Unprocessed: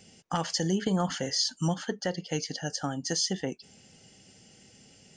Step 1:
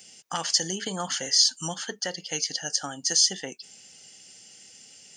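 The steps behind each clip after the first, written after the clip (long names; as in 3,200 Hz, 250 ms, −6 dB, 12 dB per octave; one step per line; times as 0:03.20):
spectral tilt +3.5 dB per octave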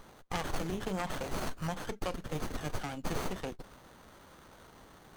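one-sided soft clipper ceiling −19 dBFS
windowed peak hold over 17 samples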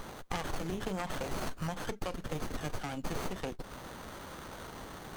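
downward compressor 3 to 1, threshold −46 dBFS, peak gain reduction 13.5 dB
level +10 dB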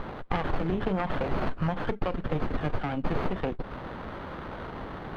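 high-frequency loss of the air 400 metres
level +9 dB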